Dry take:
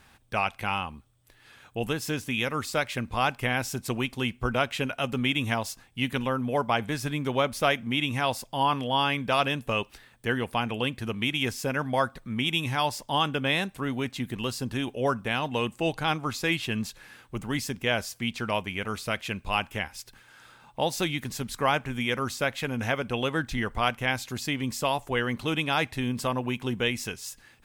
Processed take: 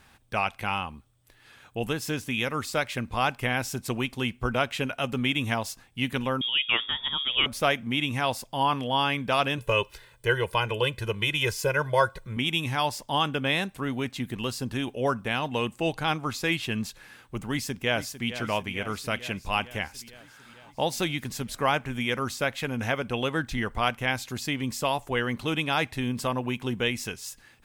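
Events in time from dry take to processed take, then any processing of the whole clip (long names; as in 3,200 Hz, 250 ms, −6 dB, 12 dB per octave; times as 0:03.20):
0:06.41–0:07.46: voice inversion scrambler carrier 3,500 Hz
0:09.58–0:12.37: comb filter 2 ms, depth 95%
0:17.50–0:18.28: delay throw 450 ms, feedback 70%, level −12.5 dB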